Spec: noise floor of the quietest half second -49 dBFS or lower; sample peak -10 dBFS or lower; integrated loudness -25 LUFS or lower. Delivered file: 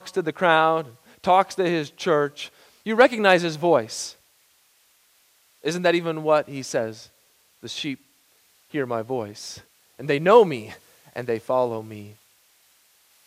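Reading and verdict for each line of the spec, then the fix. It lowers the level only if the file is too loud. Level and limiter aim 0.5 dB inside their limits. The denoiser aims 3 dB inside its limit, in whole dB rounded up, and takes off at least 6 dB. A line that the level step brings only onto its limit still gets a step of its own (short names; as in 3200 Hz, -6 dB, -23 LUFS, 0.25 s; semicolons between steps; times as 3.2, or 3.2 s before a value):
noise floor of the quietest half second -61 dBFS: OK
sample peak -2.5 dBFS: fail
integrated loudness -22.0 LUFS: fail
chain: gain -3.5 dB; limiter -10.5 dBFS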